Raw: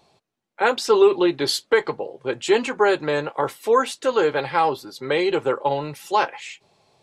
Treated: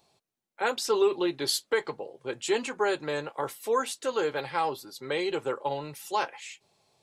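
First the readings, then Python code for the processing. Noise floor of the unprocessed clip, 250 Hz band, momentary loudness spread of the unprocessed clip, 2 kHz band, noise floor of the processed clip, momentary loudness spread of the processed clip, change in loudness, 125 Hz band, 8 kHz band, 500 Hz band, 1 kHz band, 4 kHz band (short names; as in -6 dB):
-77 dBFS, -9.0 dB, 11 LU, -8.0 dB, -84 dBFS, 10 LU, -8.5 dB, -9.0 dB, -2.0 dB, -9.0 dB, -8.5 dB, -5.5 dB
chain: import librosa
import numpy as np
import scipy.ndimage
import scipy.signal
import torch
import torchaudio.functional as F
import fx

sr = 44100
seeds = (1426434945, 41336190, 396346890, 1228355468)

y = fx.high_shelf(x, sr, hz=6100.0, db=11.5)
y = F.gain(torch.from_numpy(y), -9.0).numpy()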